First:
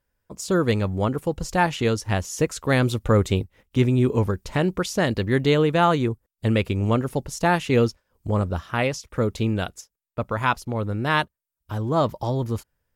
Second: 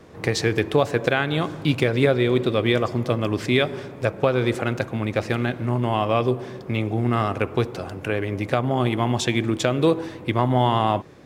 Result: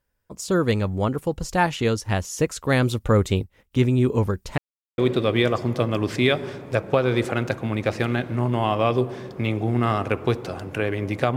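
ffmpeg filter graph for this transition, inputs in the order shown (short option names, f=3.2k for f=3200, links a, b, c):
-filter_complex "[0:a]apad=whole_dur=11.36,atrim=end=11.36,asplit=2[a][b];[a]atrim=end=4.58,asetpts=PTS-STARTPTS,afade=t=out:st=4.576:d=0.004:c=hsin[c];[b]atrim=start=4.58:end=4.98,asetpts=PTS-STARTPTS,volume=0[d];[1:a]atrim=start=2.28:end=8.66,asetpts=PTS-STARTPTS,afade=t=in:d=0.004:c=hsin[e];[c][d][e]concat=n=3:v=0:a=1"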